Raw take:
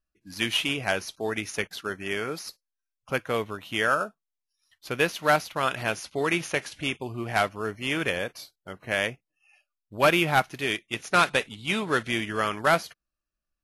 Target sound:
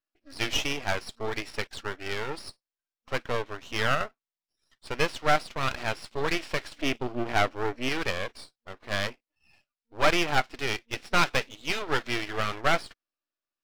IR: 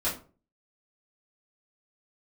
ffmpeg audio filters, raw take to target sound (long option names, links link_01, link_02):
-filter_complex "[0:a]asettb=1/sr,asplit=3[link_01][link_02][link_03];[link_01]atrim=end=6.744[link_04];[link_02]atrim=start=6.74:end=7.89,asetpts=PTS-STARTPTS,afade=type=in:duration=0.004:curve=qsin,afade=type=out:start_time=1.146:duration=0.004:curve=qsin,lowshelf=frequency=330:gain=11.5[link_05];[link_03]atrim=start=7.886[link_06];[link_04][link_05]acrossfade=duration=0.004:curve1=hsin:curve2=qsin[link_07];[link_07][link_06]acrossfade=duration=0.004:curve1=qsin:curve2=hsin,afftfilt=real='re*between(b*sr/4096,230,5700)':imag='im*between(b*sr/4096,230,5700)':win_size=4096:overlap=0.75,aeval=exprs='max(val(0),0)':channel_layout=same,volume=2.5dB"